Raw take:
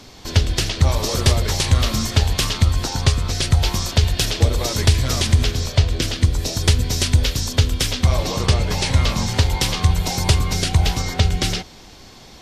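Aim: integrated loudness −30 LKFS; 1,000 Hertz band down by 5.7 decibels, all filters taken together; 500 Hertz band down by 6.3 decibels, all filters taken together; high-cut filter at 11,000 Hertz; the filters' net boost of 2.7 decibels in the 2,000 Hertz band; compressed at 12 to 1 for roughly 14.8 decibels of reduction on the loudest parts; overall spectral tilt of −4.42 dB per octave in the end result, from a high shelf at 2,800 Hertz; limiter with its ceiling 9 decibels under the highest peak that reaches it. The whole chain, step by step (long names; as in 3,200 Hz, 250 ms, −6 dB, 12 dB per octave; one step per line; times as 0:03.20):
low-pass filter 11,000 Hz
parametric band 500 Hz −6.5 dB
parametric band 1,000 Hz −6.5 dB
parametric band 2,000 Hz +9 dB
high-shelf EQ 2,800 Hz −9 dB
downward compressor 12 to 1, threshold −25 dBFS
level +2 dB
brickwall limiter −18 dBFS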